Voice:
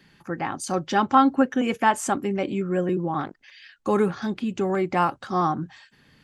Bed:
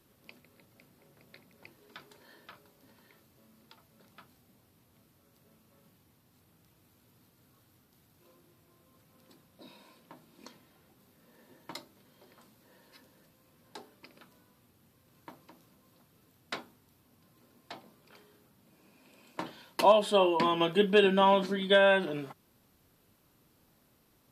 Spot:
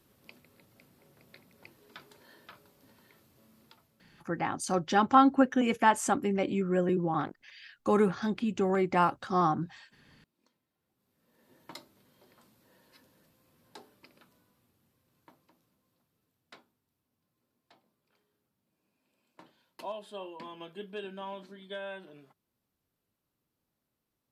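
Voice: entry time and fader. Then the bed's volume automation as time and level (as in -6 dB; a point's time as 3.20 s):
4.00 s, -3.5 dB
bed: 3.67 s 0 dB
4.49 s -21.5 dB
10.72 s -21.5 dB
11.58 s -3 dB
13.91 s -3 dB
16.88 s -17.5 dB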